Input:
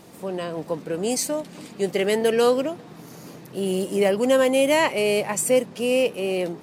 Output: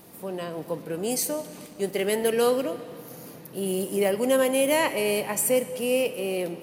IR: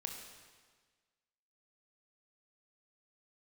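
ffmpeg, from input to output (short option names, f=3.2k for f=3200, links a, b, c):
-filter_complex "[0:a]aexciter=amount=2.6:drive=8:freq=10k,asettb=1/sr,asplit=3[a][b][c];[a]atrim=end=1.664[d];[b]atrim=start=1.66:end=2.27,asetpts=PTS-STARTPTS,afade=t=in:d=0.004:c=qsin,afade=t=out:st=0.606:d=0.004:c=qsin,aeval=exprs='sgn(val(0))*max(abs(val(0))-0.00422,0)':c=same[e];[c]atrim=start=2.266[f];[d][e]acrossfade=d=0.004:c1=hsin:c2=qsin[g];[g][f]acrossfade=d=0.004:c1=qsin:c2=hsin,asplit=2[h][i];[1:a]atrim=start_sample=2205,asetrate=30429,aresample=44100[j];[i][j]afir=irnorm=-1:irlink=0,volume=-7dB[k];[h][k]amix=inputs=2:normalize=0,volume=-6.5dB"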